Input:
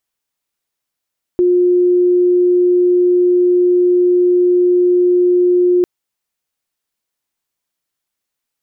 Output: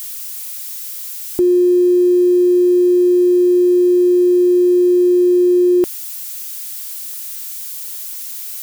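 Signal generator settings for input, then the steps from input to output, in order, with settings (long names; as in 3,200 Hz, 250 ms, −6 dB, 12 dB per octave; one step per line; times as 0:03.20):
tone sine 357 Hz −8.5 dBFS 4.45 s
spike at every zero crossing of −24.5 dBFS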